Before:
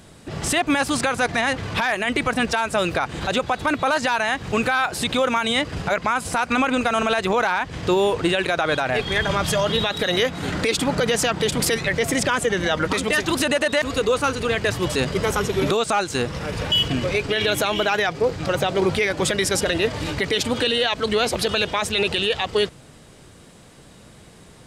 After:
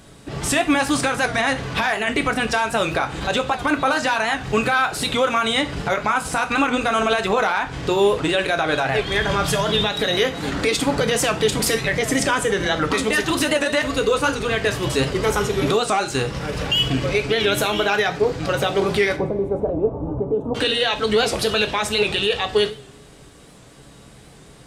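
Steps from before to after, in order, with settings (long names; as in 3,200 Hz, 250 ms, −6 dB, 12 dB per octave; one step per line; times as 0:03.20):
0:19.16–0:20.55: inverse Chebyshev low-pass filter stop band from 1,800 Hz, stop band 40 dB
coupled-rooms reverb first 0.34 s, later 1.7 s, from −25 dB, DRR 5 dB
wow of a warped record 78 rpm, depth 100 cents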